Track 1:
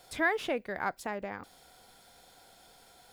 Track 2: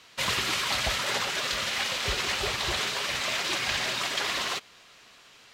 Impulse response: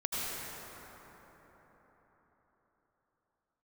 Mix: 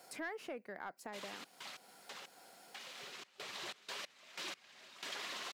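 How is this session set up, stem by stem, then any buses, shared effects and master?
-1.0 dB, 0.00 s, no send, bell 3500 Hz -12.5 dB 0.24 oct
-3.5 dB, 0.95 s, no send, step gate ".xx.x..x...xxx" 92 bpm -24 dB; auto duck -13 dB, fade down 1.80 s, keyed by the first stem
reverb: off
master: HPF 170 Hz 24 dB/oct; soft clip -21 dBFS, distortion -21 dB; compressor 2:1, threshold -51 dBFS, peak gain reduction 13 dB

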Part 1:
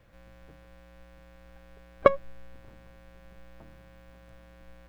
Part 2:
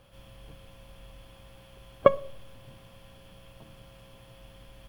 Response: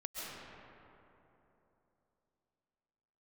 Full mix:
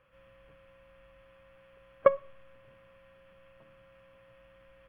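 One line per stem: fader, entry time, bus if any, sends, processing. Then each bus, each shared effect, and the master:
-0.5 dB, 0.00 s, no send, vocal tract filter e
-15.0 dB, 0.00 s, no send, band shelf 1700 Hz +15 dB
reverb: off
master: high shelf 2300 Hz -8 dB

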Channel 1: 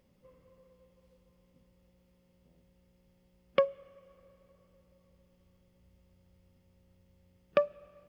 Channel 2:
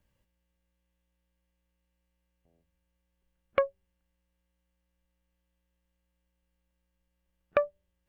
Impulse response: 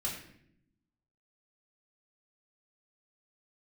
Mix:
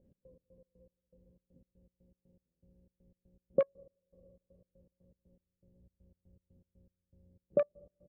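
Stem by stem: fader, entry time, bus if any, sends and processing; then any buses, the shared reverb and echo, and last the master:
+2.0 dB, 0.00 s, no send, inverse Chebyshev low-pass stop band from 2400 Hz, stop band 70 dB
-15.5 dB, 27 ms, no send, dry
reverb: off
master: step gate "x.x.x.x..xx." 120 bpm -24 dB

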